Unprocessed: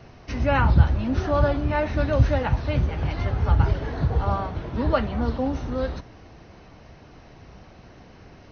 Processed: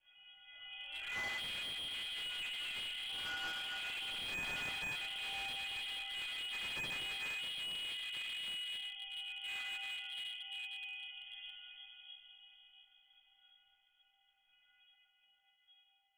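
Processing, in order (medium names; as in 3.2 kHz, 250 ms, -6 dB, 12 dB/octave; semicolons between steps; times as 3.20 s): Doppler pass-by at 2.11 s, 23 m/s, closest 23 m; high-pass 60 Hz 12 dB/octave; band-stop 1.8 kHz, Q 13; bit crusher 9-bit; inharmonic resonator 380 Hz, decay 0.68 s, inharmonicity 0.03; plain phase-vocoder stretch 1.9×; distance through air 300 m; simulated room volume 210 m³, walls hard, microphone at 2.2 m; frequency inversion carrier 3.3 kHz; slew-rate limiter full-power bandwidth 14 Hz; trim +5.5 dB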